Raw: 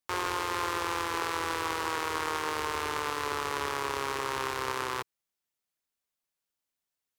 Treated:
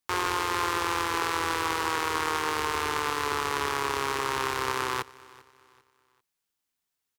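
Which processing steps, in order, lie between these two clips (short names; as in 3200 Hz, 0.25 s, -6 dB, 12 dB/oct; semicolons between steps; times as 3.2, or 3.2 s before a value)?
bell 580 Hz -7 dB 0.31 oct; on a send: feedback echo 0.395 s, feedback 36%, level -22 dB; on the sum: gain +4 dB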